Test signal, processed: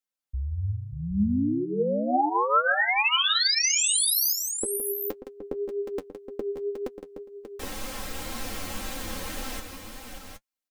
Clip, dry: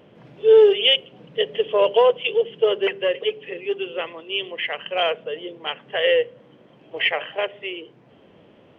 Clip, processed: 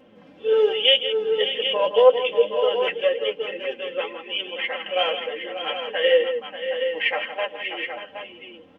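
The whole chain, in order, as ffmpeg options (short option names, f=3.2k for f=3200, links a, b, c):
-af "aecho=1:1:3.8:0.86,aecho=1:1:164|586|770:0.299|0.316|0.376,flanger=delay=7.4:depth=3.9:regen=35:speed=1.9:shape=triangular"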